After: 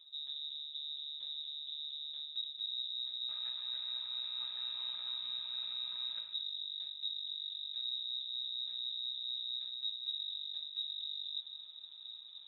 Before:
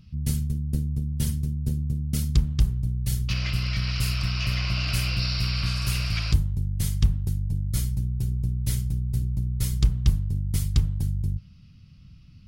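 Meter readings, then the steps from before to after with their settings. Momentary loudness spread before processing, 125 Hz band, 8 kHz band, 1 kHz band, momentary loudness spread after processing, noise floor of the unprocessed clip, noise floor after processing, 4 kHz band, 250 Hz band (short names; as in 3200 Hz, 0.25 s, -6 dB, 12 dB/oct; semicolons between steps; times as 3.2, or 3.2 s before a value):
4 LU, under -40 dB, under -40 dB, -19.0 dB, 4 LU, -50 dBFS, -52 dBFS, 0.0 dB, under -40 dB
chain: minimum comb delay 2.8 ms; HPF 43 Hz; low shelf 370 Hz +7.5 dB; reverse; compressor 12:1, threshold -33 dBFS, peak gain reduction 25 dB; reverse; air absorption 300 m; on a send: reverse echo 0.256 s -23.5 dB; on the sum: non-linear reverb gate 0.27 s flat, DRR 9.5 dB; inverted band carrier 3800 Hz; gain -6.5 dB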